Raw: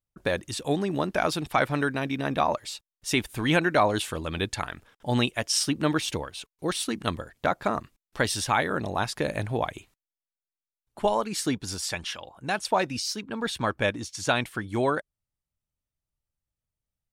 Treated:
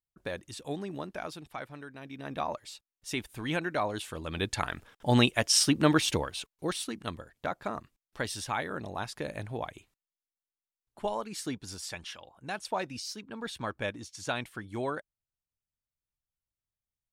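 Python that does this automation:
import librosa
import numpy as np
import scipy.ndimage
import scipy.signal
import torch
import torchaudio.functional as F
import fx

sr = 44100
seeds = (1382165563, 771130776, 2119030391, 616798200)

y = fx.gain(x, sr, db=fx.line((0.88, -10.0), (1.86, -19.5), (2.39, -9.0), (4.02, -9.0), (4.73, 1.5), (6.35, 1.5), (6.97, -8.5)))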